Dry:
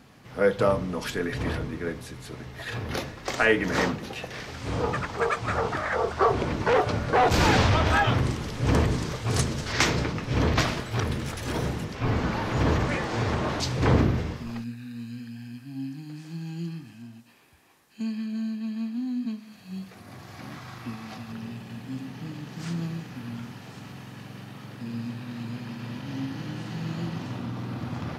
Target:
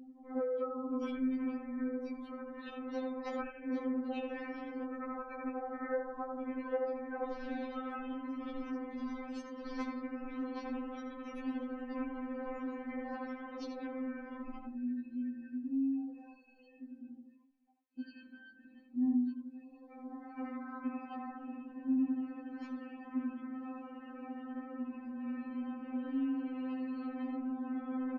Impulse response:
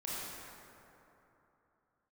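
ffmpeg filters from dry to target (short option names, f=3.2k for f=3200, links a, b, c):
-filter_complex "[0:a]asplit=2[a][b];[b]adelay=81,lowpass=f=3.7k:p=1,volume=-3dB,asplit=2[c][d];[d]adelay=81,lowpass=f=3.7k:p=1,volume=0.37,asplit=2[e][f];[f]adelay=81,lowpass=f=3.7k:p=1,volume=0.37,asplit=2[g][h];[h]adelay=81,lowpass=f=3.7k:p=1,volume=0.37,asplit=2[i][j];[j]adelay=81,lowpass=f=3.7k:p=1,volume=0.37[k];[a][c][e][g][i][k]amix=inputs=6:normalize=0,acrossover=split=790|6500[l][m][n];[l]acompressor=threshold=-30dB:ratio=4[o];[m]acompressor=threshold=-41dB:ratio=4[p];[n]acompressor=threshold=-53dB:ratio=4[q];[o][p][q]amix=inputs=3:normalize=0,highshelf=f=2k:g=-9,afftdn=nr=33:nf=-50,adynamicequalizer=threshold=0.00316:dfrequency=750:dqfactor=1.4:tfrequency=750:tqfactor=1.4:attack=5:release=100:ratio=0.375:range=1.5:mode=cutabove:tftype=bell,acompressor=threshold=-34dB:ratio=6,afftfilt=real='re*3.46*eq(mod(b,12),0)':imag='im*3.46*eq(mod(b,12),0)':win_size=2048:overlap=0.75,volume=2.5dB"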